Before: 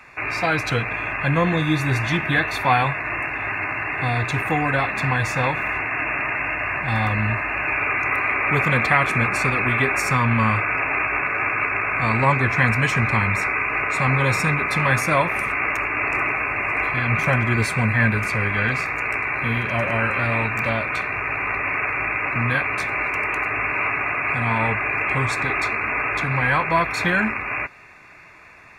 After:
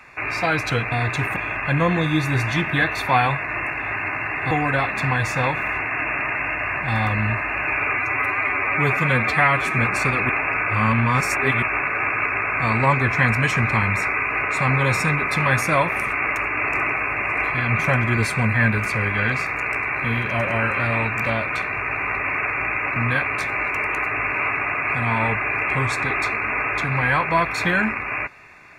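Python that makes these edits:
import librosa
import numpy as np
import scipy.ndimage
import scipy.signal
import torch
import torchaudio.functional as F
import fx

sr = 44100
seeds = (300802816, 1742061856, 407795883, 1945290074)

y = fx.edit(x, sr, fx.move(start_s=4.07, length_s=0.44, to_s=0.92),
    fx.stretch_span(start_s=7.97, length_s=1.21, factor=1.5),
    fx.reverse_span(start_s=9.69, length_s=1.33), tone=tone)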